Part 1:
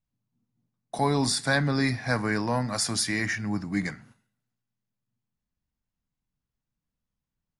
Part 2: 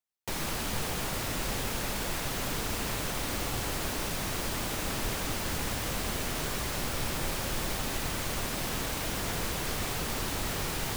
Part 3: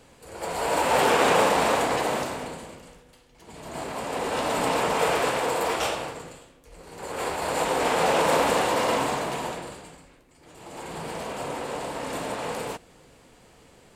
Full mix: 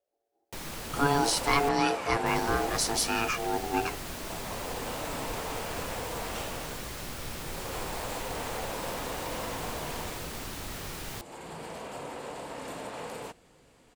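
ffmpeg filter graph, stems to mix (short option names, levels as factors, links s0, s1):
-filter_complex "[0:a]aeval=exprs='val(0)*sin(2*PI*570*n/s)':c=same,volume=1.19[s0];[1:a]adelay=250,volume=0.501,asplit=3[s1][s2][s3];[s1]atrim=end=1.69,asetpts=PTS-STARTPTS,afade=t=out:st=1.686:d=0.004:c=hsin[s4];[s2]atrim=start=1.69:end=2.26,asetpts=PTS-STARTPTS,volume=0[s5];[s3]atrim=start=2.26,asetpts=PTS-STARTPTS,afade=t=in:d=0.004:c=hsin[s6];[s4][s5][s6]concat=n=3:v=0:a=1[s7];[2:a]acompressor=threshold=0.0398:ratio=6,adelay=550,volume=0.473[s8];[s0][s7][s8]amix=inputs=3:normalize=0"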